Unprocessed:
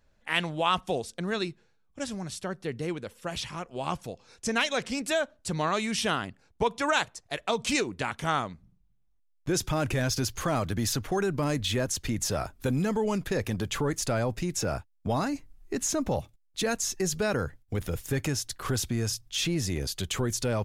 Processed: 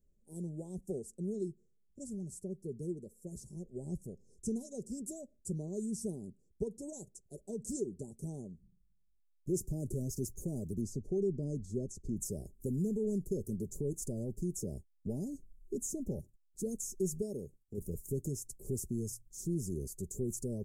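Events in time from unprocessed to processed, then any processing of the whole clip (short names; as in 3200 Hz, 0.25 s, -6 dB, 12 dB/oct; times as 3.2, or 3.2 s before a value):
3.56–4.63 low shelf 130 Hz +8 dB
10.81–12.17 LPF 5200 Hz
17.22–17.78 low shelf 190 Hz -10 dB
whole clip: elliptic band-stop 420–7500 Hz, stop band 60 dB; band shelf 2300 Hz -9.5 dB; comb 5.1 ms, depth 40%; gain -6.5 dB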